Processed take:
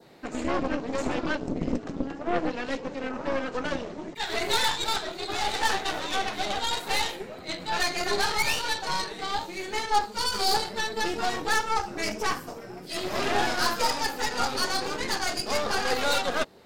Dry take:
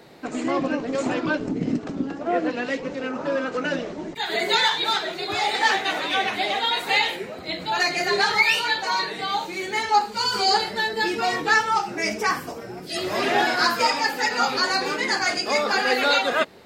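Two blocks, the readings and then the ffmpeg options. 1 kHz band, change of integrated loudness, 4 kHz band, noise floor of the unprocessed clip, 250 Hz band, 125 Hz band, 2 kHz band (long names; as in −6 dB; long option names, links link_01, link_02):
−5.0 dB, −5.5 dB, −5.0 dB, −37 dBFS, −4.5 dB, −1.5 dB, −7.5 dB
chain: -af "aeval=exprs='0.501*(cos(1*acos(clip(val(0)/0.501,-1,1)))-cos(1*PI/2))+0.0708*(cos(8*acos(clip(val(0)/0.501,-1,1)))-cos(8*PI/2))':channel_layout=same,adynamicequalizer=threshold=0.0158:dfrequency=2200:dqfactor=1.4:tfrequency=2200:tqfactor=1.4:attack=5:release=100:ratio=0.375:range=3:mode=cutabove:tftype=bell,volume=-5dB"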